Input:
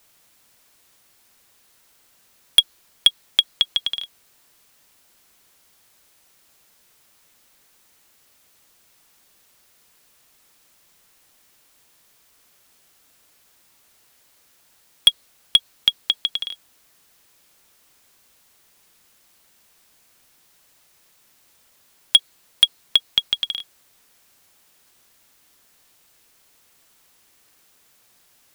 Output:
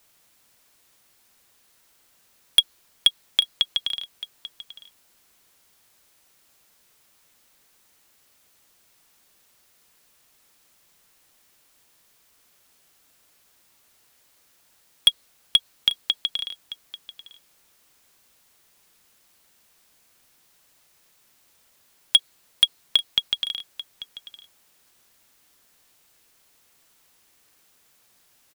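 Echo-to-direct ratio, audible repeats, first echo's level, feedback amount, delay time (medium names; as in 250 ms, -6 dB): -16.0 dB, 1, -16.0 dB, no regular repeats, 840 ms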